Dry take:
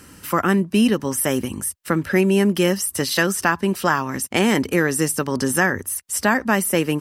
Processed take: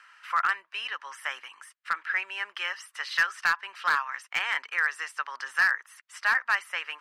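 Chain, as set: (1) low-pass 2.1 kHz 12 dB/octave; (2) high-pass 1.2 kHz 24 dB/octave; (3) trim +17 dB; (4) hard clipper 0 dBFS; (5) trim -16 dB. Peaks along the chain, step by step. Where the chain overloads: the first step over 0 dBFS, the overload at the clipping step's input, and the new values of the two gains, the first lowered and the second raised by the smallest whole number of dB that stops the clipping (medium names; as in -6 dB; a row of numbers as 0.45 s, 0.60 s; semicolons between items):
-3.5 dBFS, -9.0 dBFS, +8.0 dBFS, 0.0 dBFS, -16.0 dBFS; step 3, 8.0 dB; step 3 +9 dB, step 5 -8 dB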